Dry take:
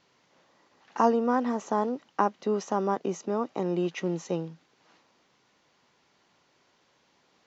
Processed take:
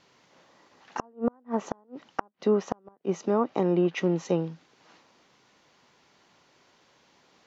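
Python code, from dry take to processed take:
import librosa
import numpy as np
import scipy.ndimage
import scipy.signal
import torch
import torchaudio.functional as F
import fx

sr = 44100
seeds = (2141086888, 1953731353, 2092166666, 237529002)

y = fx.env_lowpass_down(x, sr, base_hz=1400.0, full_db=-21.5)
y = fx.gate_flip(y, sr, shuts_db=-17.0, range_db=-37)
y = y * 10.0 ** (4.5 / 20.0)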